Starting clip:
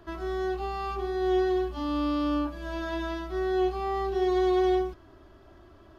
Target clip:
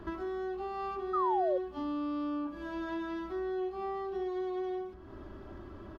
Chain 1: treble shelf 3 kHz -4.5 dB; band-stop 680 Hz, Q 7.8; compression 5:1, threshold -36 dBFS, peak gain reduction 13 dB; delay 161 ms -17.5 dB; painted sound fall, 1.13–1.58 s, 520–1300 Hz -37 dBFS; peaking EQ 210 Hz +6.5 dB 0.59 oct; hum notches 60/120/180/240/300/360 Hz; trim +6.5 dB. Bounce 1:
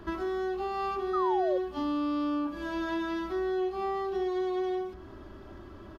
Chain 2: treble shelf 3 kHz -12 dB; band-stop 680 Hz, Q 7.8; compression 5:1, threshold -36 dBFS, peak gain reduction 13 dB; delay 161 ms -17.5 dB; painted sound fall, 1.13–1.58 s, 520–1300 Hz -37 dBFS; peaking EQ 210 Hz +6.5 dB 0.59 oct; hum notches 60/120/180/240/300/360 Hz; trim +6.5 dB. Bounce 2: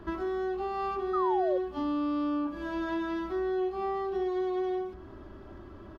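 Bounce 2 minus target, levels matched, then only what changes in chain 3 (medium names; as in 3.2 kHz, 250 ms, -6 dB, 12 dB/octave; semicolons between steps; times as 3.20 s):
compression: peak gain reduction -5 dB
change: compression 5:1, threshold -42 dBFS, peak gain reduction 17.5 dB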